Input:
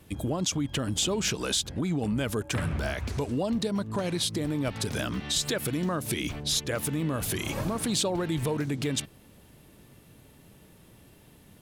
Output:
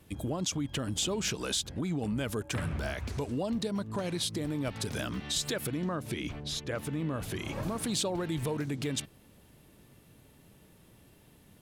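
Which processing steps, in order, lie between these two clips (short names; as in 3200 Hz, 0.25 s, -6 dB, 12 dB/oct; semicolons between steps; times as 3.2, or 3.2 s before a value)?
5.67–7.63 LPF 3100 Hz 6 dB/oct; gain -4 dB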